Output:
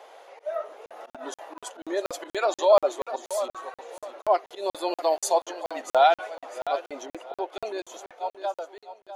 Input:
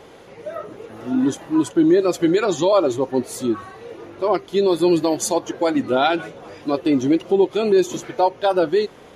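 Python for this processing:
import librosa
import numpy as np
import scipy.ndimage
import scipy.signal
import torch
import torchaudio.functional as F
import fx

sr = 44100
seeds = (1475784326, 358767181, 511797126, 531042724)

y = fx.fade_out_tail(x, sr, length_s=2.32)
y = fx.lowpass(y, sr, hz=2500.0, slope=12, at=(7.05, 7.51), fade=0.02)
y = fx.auto_swell(y, sr, attack_ms=102.0)
y = fx.ladder_highpass(y, sr, hz=570.0, resonance_pct=50)
y = fx.echo_feedback(y, sr, ms=650, feedback_pct=28, wet_db=-12.0)
y = fx.buffer_crackle(y, sr, first_s=0.86, period_s=0.24, block=2048, kind='zero')
y = y * 10.0 ** (4.0 / 20.0)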